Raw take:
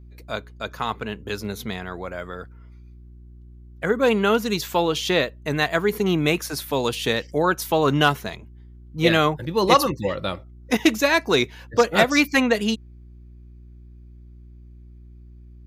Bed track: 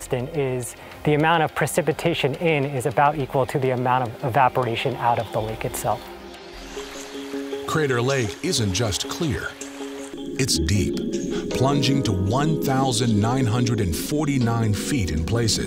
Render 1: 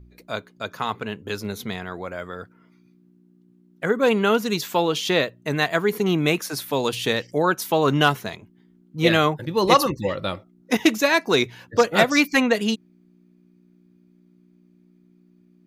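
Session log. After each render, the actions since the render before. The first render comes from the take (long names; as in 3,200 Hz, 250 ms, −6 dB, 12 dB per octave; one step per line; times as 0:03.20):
hum removal 60 Hz, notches 2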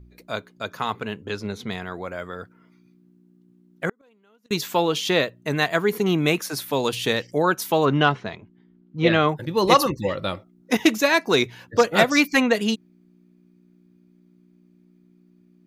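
0:01.25–0:01.71: high-frequency loss of the air 67 metres
0:03.89–0:04.51: gate with flip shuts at −17 dBFS, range −40 dB
0:07.85–0:09.29: Gaussian smoothing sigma 1.9 samples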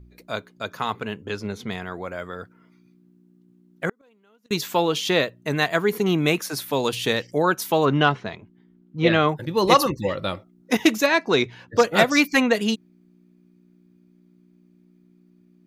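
0:01.04–0:02.09: notch filter 3,900 Hz
0:11.06–0:11.75: high-frequency loss of the air 81 metres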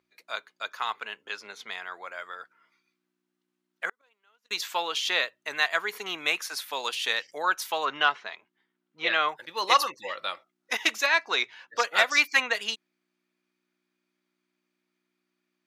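high-pass filter 1,100 Hz 12 dB per octave
high-shelf EQ 9,200 Hz −11.5 dB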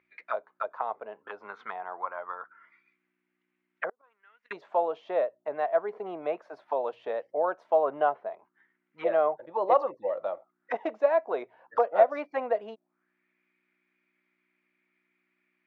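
envelope-controlled low-pass 630–2,200 Hz down, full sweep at −31.5 dBFS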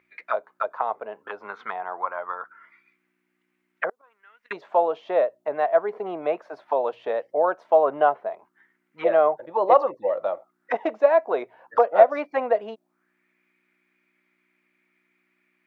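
level +6 dB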